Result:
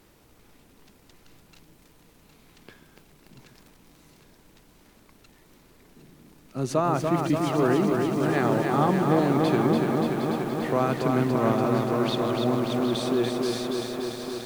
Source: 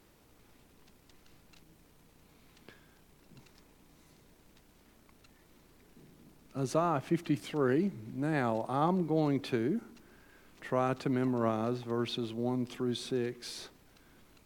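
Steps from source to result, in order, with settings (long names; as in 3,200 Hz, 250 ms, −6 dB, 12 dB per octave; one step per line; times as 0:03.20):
echo with a time of its own for lows and highs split 420 Hz, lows 138 ms, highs 761 ms, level −9 dB
feedback echo at a low word length 290 ms, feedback 80%, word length 9 bits, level −4 dB
level +5.5 dB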